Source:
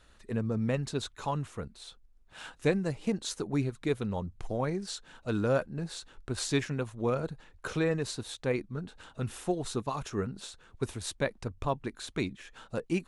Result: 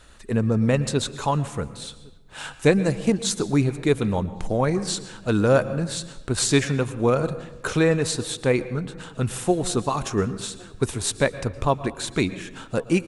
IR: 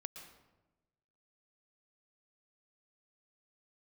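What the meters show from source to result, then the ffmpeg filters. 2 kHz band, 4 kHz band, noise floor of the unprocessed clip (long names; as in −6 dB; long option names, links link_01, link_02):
+10.0 dB, +10.0 dB, −60 dBFS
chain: -filter_complex "[0:a]equalizer=frequency=8400:width_type=o:width=0.66:gain=5,asplit=2[link_01][link_02];[link_02]adelay=1108,volume=-27dB,highshelf=frequency=4000:gain=-24.9[link_03];[link_01][link_03]amix=inputs=2:normalize=0,asplit=2[link_04][link_05];[1:a]atrim=start_sample=2205[link_06];[link_05][link_06]afir=irnorm=-1:irlink=0,volume=0dB[link_07];[link_04][link_07]amix=inputs=2:normalize=0,volume=5.5dB"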